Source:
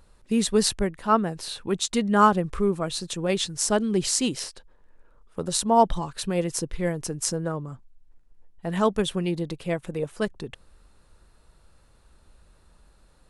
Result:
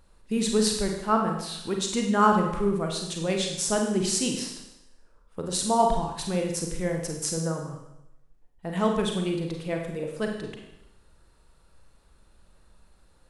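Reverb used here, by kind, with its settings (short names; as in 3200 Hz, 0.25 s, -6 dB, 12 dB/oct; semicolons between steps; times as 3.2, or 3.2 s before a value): Schroeder reverb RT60 0.86 s, combs from 33 ms, DRR 2 dB; gain -3.5 dB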